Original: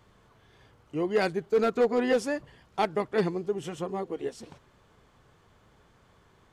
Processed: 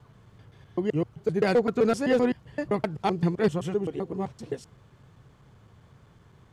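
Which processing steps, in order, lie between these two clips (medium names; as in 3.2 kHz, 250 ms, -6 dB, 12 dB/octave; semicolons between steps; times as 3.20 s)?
slices played last to first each 129 ms, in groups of 3; peaking EQ 120 Hz +12 dB 1.6 oct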